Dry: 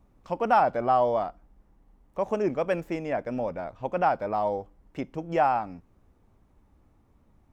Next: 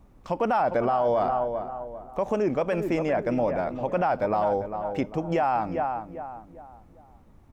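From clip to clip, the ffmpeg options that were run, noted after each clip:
ffmpeg -i in.wav -filter_complex "[0:a]asplit=2[link_01][link_02];[link_02]adelay=397,lowpass=frequency=1500:poles=1,volume=-10.5dB,asplit=2[link_03][link_04];[link_04]adelay=397,lowpass=frequency=1500:poles=1,volume=0.38,asplit=2[link_05][link_06];[link_06]adelay=397,lowpass=frequency=1500:poles=1,volume=0.38,asplit=2[link_07][link_08];[link_08]adelay=397,lowpass=frequency=1500:poles=1,volume=0.38[link_09];[link_03][link_05][link_07][link_09]amix=inputs=4:normalize=0[link_10];[link_01][link_10]amix=inputs=2:normalize=0,alimiter=limit=-22.5dB:level=0:latency=1:release=68,volume=6.5dB" out.wav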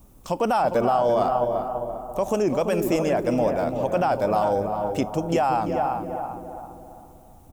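ffmpeg -i in.wav -filter_complex "[0:a]asplit=2[link_01][link_02];[link_02]adelay=339,lowpass=frequency=1200:poles=1,volume=-6.5dB,asplit=2[link_03][link_04];[link_04]adelay=339,lowpass=frequency=1200:poles=1,volume=0.46,asplit=2[link_05][link_06];[link_06]adelay=339,lowpass=frequency=1200:poles=1,volume=0.46,asplit=2[link_07][link_08];[link_08]adelay=339,lowpass=frequency=1200:poles=1,volume=0.46,asplit=2[link_09][link_10];[link_10]adelay=339,lowpass=frequency=1200:poles=1,volume=0.46[link_11];[link_01][link_03][link_05][link_07][link_09][link_11]amix=inputs=6:normalize=0,aexciter=amount=5.5:drive=5.5:freq=2900,equalizer=frequency=4200:width=0.83:gain=-9.5,volume=2.5dB" out.wav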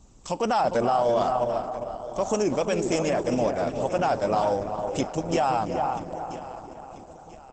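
ffmpeg -i in.wav -af "crystalizer=i=2.5:c=0,aecho=1:1:986|1972|2958:0.188|0.0697|0.0258,volume=-2dB" -ar 48000 -c:a libopus -b:a 12k out.opus

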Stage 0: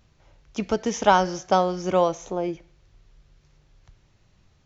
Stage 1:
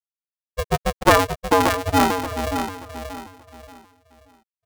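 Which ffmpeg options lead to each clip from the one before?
ffmpeg -i in.wav -filter_complex "[0:a]afftfilt=real='re*gte(hypot(re,im),0.316)':imag='im*gte(hypot(re,im),0.316)':win_size=1024:overlap=0.75,asplit=2[link_01][link_02];[link_02]adelay=580,lowpass=frequency=1300:poles=1,volume=-7dB,asplit=2[link_03][link_04];[link_04]adelay=580,lowpass=frequency=1300:poles=1,volume=0.33,asplit=2[link_05][link_06];[link_06]adelay=580,lowpass=frequency=1300:poles=1,volume=0.33,asplit=2[link_07][link_08];[link_08]adelay=580,lowpass=frequency=1300:poles=1,volume=0.33[link_09];[link_01][link_03][link_05][link_07][link_09]amix=inputs=5:normalize=0,aeval=exprs='val(0)*sgn(sin(2*PI*280*n/s))':channel_layout=same,volume=3.5dB" out.wav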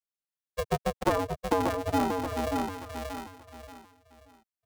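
ffmpeg -i in.wav -filter_complex "[0:a]acrossover=split=120|880[link_01][link_02][link_03];[link_01]acompressor=threshold=-37dB:ratio=4[link_04];[link_02]acompressor=threshold=-20dB:ratio=4[link_05];[link_03]acompressor=threshold=-32dB:ratio=4[link_06];[link_04][link_05][link_06]amix=inputs=3:normalize=0,volume=-3.5dB" out.wav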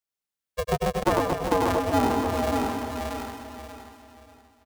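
ffmpeg -i in.wav -af "aecho=1:1:100|230|399|618.7|904.3:0.631|0.398|0.251|0.158|0.1,volume=2.5dB" out.wav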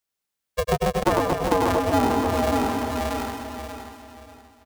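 ffmpeg -i in.wav -af "acompressor=threshold=-29dB:ratio=1.5,volume=6dB" out.wav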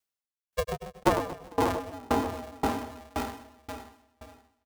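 ffmpeg -i in.wav -af "aeval=exprs='val(0)*pow(10,-30*if(lt(mod(1.9*n/s,1),2*abs(1.9)/1000),1-mod(1.9*n/s,1)/(2*abs(1.9)/1000),(mod(1.9*n/s,1)-2*abs(1.9)/1000)/(1-2*abs(1.9)/1000))/20)':channel_layout=same" out.wav

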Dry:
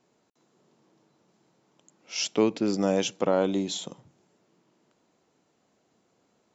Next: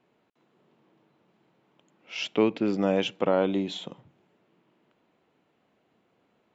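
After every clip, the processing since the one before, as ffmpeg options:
ffmpeg -i in.wav -af "highshelf=frequency=4200:width_type=q:width=1.5:gain=-12.5" out.wav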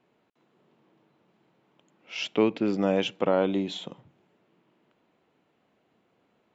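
ffmpeg -i in.wav -af anull out.wav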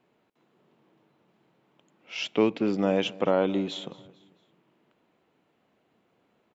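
ffmpeg -i in.wav -af "aecho=1:1:223|446|669:0.0891|0.041|0.0189" out.wav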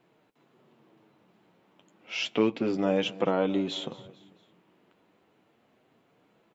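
ffmpeg -i in.wav -filter_complex "[0:a]asplit=2[link_01][link_02];[link_02]acompressor=threshold=-33dB:ratio=6,volume=2dB[link_03];[link_01][link_03]amix=inputs=2:normalize=0,flanger=delay=5.9:depth=5.1:regen=-39:speed=0.31:shape=triangular" out.wav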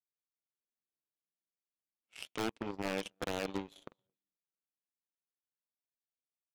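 ffmpeg -i in.wav -af "aeval=exprs='0.119*(abs(mod(val(0)/0.119+3,4)-2)-1)':channel_layout=same,agate=range=-7dB:threshold=-52dB:ratio=16:detection=peak,aeval=exprs='0.126*(cos(1*acos(clip(val(0)/0.126,-1,1)))-cos(1*PI/2))+0.0447*(cos(3*acos(clip(val(0)/0.126,-1,1)))-cos(3*PI/2))+0.00316*(cos(5*acos(clip(val(0)/0.126,-1,1)))-cos(5*PI/2))+0.000794*(cos(7*acos(clip(val(0)/0.126,-1,1)))-cos(7*PI/2))':channel_layout=same,volume=-6dB" out.wav

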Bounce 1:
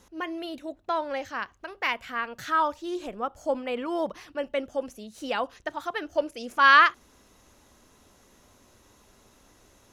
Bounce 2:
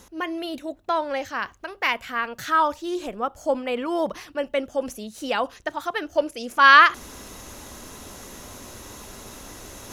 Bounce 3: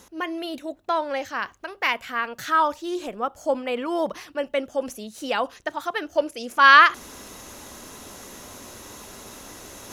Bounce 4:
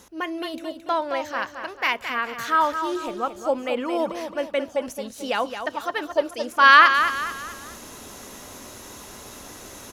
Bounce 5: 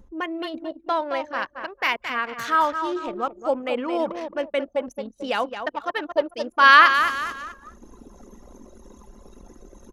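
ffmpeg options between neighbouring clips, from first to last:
ffmpeg -i in.wav -af "highshelf=frequency=8300:gain=6,areverse,acompressor=mode=upward:threshold=-32dB:ratio=2.5,areverse,volume=4dB" out.wav
ffmpeg -i in.wav -af "lowshelf=frequency=95:gain=-9" out.wav
ffmpeg -i in.wav -af "aecho=1:1:220|440|660|880:0.376|0.15|0.0601|0.0241" out.wav
ffmpeg -i in.wav -filter_complex "[0:a]anlmdn=10,asplit=2[link_01][link_02];[link_02]acompressor=mode=upward:threshold=-26dB:ratio=2.5,volume=1dB[link_03];[link_01][link_03]amix=inputs=2:normalize=0,volume=-6.5dB" out.wav

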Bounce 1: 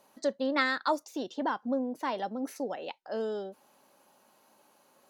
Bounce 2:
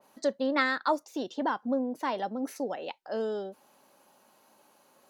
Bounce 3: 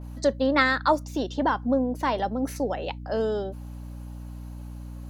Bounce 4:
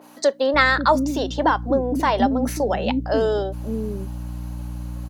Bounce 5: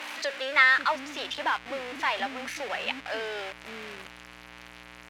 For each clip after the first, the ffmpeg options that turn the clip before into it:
ffmpeg -i in.wav -af "adynamicequalizer=threshold=0.00562:dfrequency=2600:dqfactor=0.7:tfrequency=2600:tqfactor=0.7:attack=5:release=100:ratio=0.375:range=3:mode=cutabove:tftype=highshelf,volume=1.5dB" out.wav
ffmpeg -i in.wav -af "aeval=exprs='val(0)+0.00794*(sin(2*PI*60*n/s)+sin(2*PI*2*60*n/s)/2+sin(2*PI*3*60*n/s)/3+sin(2*PI*4*60*n/s)/4+sin(2*PI*5*60*n/s)/5)':channel_layout=same,volume=5.5dB" out.wav
ffmpeg -i in.wav -filter_complex "[0:a]asplit=2[link_01][link_02];[link_02]alimiter=limit=-18dB:level=0:latency=1:release=134,volume=1dB[link_03];[link_01][link_03]amix=inputs=2:normalize=0,acrossover=split=320[link_04][link_05];[link_04]adelay=540[link_06];[link_06][link_05]amix=inputs=2:normalize=0,volume=1.5dB" out.wav
ffmpeg -i in.wav -af "aeval=exprs='val(0)+0.5*0.075*sgn(val(0))':channel_layout=same,bandpass=frequency=2300:width_type=q:width=1.7:csg=0" out.wav

